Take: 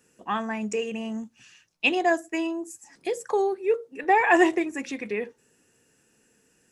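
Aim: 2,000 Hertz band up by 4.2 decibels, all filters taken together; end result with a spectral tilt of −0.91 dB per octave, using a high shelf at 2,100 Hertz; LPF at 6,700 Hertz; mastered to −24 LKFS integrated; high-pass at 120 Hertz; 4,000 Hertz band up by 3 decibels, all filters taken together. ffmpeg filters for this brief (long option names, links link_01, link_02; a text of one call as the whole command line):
ffmpeg -i in.wav -af "highpass=120,lowpass=6700,equalizer=frequency=2000:width_type=o:gain=6,highshelf=frequency=2100:gain=-4,equalizer=frequency=4000:width_type=o:gain=5.5" out.wav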